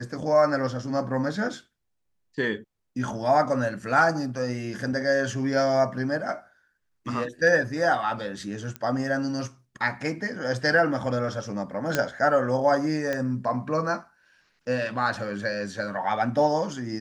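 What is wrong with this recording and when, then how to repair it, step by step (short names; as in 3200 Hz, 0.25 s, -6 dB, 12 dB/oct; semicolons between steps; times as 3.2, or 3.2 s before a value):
8.76 pop -18 dBFS
11.95 pop -8 dBFS
13.13 pop -15 dBFS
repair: de-click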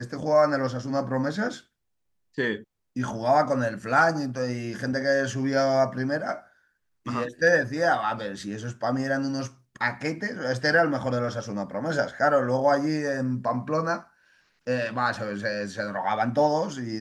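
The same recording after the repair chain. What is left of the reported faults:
none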